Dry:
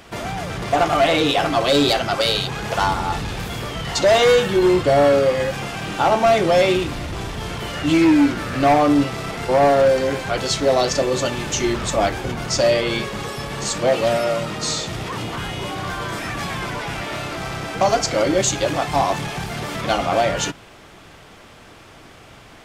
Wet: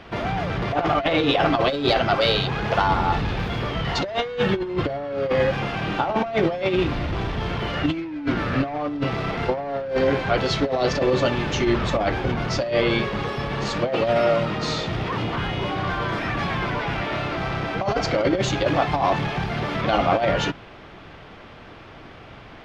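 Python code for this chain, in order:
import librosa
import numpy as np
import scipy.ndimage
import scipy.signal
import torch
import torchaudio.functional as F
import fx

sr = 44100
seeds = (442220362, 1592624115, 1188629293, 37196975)

y = fx.air_absorb(x, sr, metres=300.0)
y = fx.over_compress(y, sr, threshold_db=-20.0, ratio=-0.5)
y = fx.high_shelf(y, sr, hz=4800.0, db=7.5)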